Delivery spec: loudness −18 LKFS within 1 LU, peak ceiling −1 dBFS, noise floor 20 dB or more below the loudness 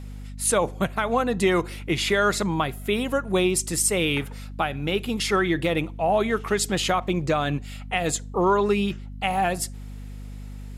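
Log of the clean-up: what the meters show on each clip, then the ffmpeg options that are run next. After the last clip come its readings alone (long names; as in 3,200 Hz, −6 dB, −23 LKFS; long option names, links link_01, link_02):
mains hum 50 Hz; hum harmonics up to 250 Hz; level of the hum −35 dBFS; integrated loudness −24.0 LKFS; sample peak −10.5 dBFS; target loudness −18.0 LKFS
→ -af "bandreject=frequency=50:width_type=h:width=6,bandreject=frequency=100:width_type=h:width=6,bandreject=frequency=150:width_type=h:width=6,bandreject=frequency=200:width_type=h:width=6,bandreject=frequency=250:width_type=h:width=6"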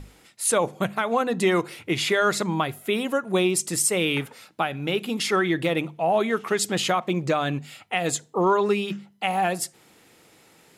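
mains hum none found; integrated loudness −24.5 LKFS; sample peak −10.0 dBFS; target loudness −18.0 LKFS
→ -af "volume=6.5dB"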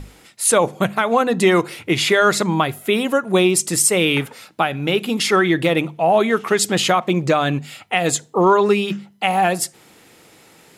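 integrated loudness −18.0 LKFS; sample peak −3.5 dBFS; background noise floor −50 dBFS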